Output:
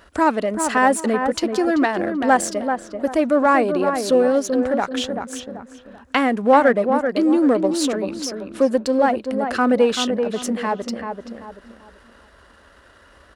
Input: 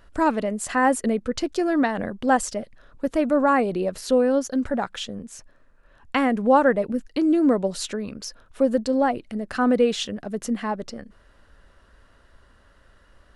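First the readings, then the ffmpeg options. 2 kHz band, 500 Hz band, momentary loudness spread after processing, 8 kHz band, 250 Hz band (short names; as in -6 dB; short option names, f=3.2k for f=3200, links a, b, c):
+5.0 dB, +4.5 dB, 12 LU, +5.0 dB, +2.5 dB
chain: -filter_complex "[0:a]aeval=exprs='if(lt(val(0),0),0.708*val(0),val(0))':c=same,highpass=71,asplit=2[a][b];[b]adelay=386,lowpass=f=1.6k:p=1,volume=-6.5dB,asplit=2[c][d];[d]adelay=386,lowpass=f=1.6k:p=1,volume=0.31,asplit=2[e][f];[f]adelay=386,lowpass=f=1.6k:p=1,volume=0.31,asplit=2[g][h];[h]adelay=386,lowpass=f=1.6k:p=1,volume=0.31[i];[a][c][e][g][i]amix=inputs=5:normalize=0,asplit=2[j][k];[k]acompressor=threshold=-37dB:ratio=6,volume=-1.5dB[l];[j][l]amix=inputs=2:normalize=0,equalizer=f=130:t=o:w=1:g=-11,volume=4.5dB"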